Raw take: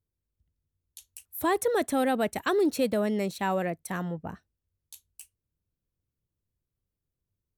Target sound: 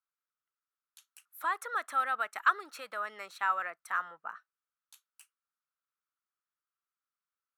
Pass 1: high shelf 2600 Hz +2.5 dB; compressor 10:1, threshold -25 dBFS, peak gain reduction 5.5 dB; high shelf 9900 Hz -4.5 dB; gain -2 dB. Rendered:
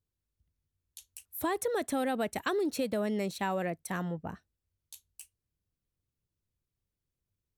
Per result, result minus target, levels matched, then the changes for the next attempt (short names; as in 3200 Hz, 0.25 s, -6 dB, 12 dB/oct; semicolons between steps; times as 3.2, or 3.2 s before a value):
4000 Hz band +5.0 dB; 1000 Hz band -5.0 dB
change: first high shelf 2600 Hz -8 dB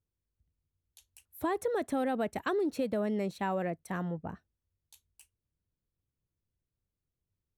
1000 Hz band -5.5 dB
add after compressor: resonant high-pass 1300 Hz, resonance Q 6.6